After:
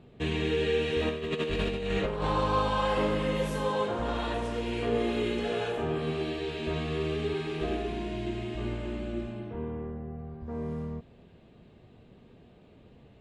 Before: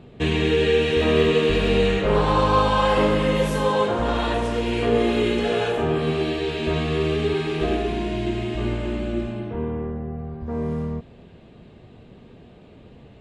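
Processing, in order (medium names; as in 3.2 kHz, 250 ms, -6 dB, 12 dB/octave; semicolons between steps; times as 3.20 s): 1.09–2.30 s: compressor with a negative ratio -21 dBFS, ratio -0.5; trim -8.5 dB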